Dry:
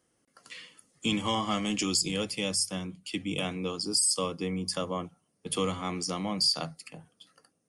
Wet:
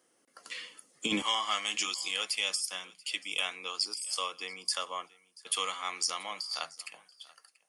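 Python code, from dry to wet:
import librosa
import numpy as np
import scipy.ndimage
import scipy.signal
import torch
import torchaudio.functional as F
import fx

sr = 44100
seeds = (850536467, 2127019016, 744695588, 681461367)

y = fx.highpass(x, sr, hz=fx.steps((0.0, 320.0), (1.22, 1200.0)), slope=12)
y = fx.over_compress(y, sr, threshold_db=-31.0, ratio=-0.5)
y = y + 10.0 ** (-22.5 / 20.0) * np.pad(y, (int(684 * sr / 1000.0), 0))[:len(y)]
y = F.gain(torch.from_numpy(y), 1.5).numpy()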